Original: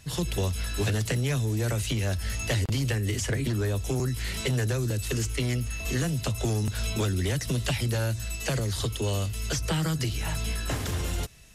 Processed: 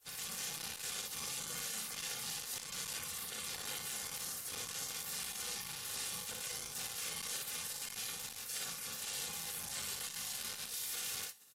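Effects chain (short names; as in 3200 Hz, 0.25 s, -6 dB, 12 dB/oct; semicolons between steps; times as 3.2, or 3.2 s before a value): de-hum 71.12 Hz, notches 17; spectral gate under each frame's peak -30 dB weak; bell 1500 Hz -4.5 dB 1 oct; notch 420 Hz, Q 12; comb 3.1 ms, depth 56%; limiter -35.5 dBFS, peak gain reduction 10.5 dB; ring modulator 490 Hz; early reflections 37 ms -7 dB, 59 ms -3.5 dB; core saturation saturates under 1700 Hz; gain +6.5 dB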